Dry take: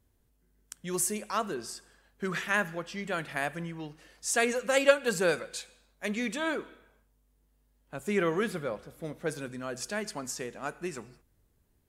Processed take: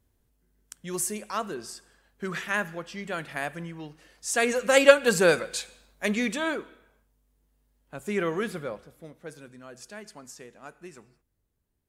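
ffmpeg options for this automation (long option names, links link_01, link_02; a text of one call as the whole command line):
ffmpeg -i in.wav -af "volume=6.5dB,afade=type=in:start_time=4.28:duration=0.5:silence=0.473151,afade=type=out:start_time=6.05:duration=0.6:silence=0.473151,afade=type=out:start_time=8.65:duration=0.47:silence=0.375837" out.wav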